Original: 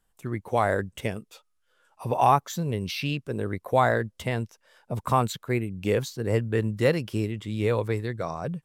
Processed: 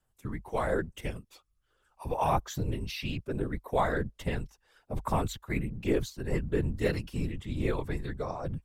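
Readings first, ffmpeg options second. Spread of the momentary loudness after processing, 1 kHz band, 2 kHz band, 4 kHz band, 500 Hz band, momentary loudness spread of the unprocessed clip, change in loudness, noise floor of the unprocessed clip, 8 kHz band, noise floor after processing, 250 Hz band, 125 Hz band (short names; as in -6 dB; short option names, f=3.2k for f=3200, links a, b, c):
10 LU, -8.0 dB, -6.0 dB, -6.0 dB, -6.0 dB, 11 LU, -6.0 dB, -72 dBFS, -5.5 dB, -75 dBFS, -4.0 dB, -5.5 dB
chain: -af "aphaser=in_gain=1:out_gain=1:delay=1.1:decay=0.33:speed=1.2:type=sinusoidal,afftfilt=real='hypot(re,im)*cos(2*PI*random(0))':imag='hypot(re,im)*sin(2*PI*random(1))':win_size=512:overlap=0.75,afreqshift=-50"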